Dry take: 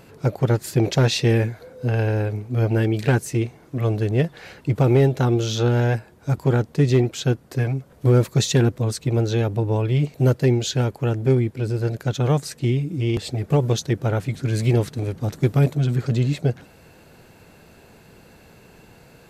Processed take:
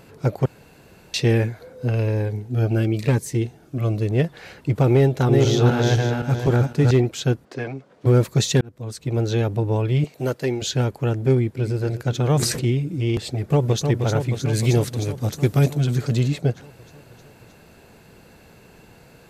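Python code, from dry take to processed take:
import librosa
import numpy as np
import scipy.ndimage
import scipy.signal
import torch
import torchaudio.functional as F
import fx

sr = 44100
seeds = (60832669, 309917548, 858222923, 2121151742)

y = fx.notch_cascade(x, sr, direction='falling', hz=1.0, at=(1.89, 4.08), fade=0.02)
y = fx.reverse_delay_fb(y, sr, ms=256, feedback_pct=46, wet_db=-2.0, at=(4.94, 6.91))
y = fx.bandpass_edges(y, sr, low_hz=240.0, high_hz=5100.0, at=(7.44, 8.05), fade=0.02)
y = fx.highpass(y, sr, hz=410.0, slope=6, at=(10.04, 10.62))
y = fx.echo_throw(y, sr, start_s=11.33, length_s=0.43, ms=250, feedback_pct=70, wet_db=-13.5)
y = fx.sustainer(y, sr, db_per_s=48.0, at=(12.26, 12.7))
y = fx.echo_throw(y, sr, start_s=13.37, length_s=0.48, ms=310, feedback_pct=75, wet_db=-6.0)
y = fx.high_shelf(y, sr, hz=4000.0, db=7.5, at=(14.53, 16.28))
y = fx.edit(y, sr, fx.room_tone_fill(start_s=0.46, length_s=0.68),
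    fx.fade_in_span(start_s=8.61, length_s=0.69), tone=tone)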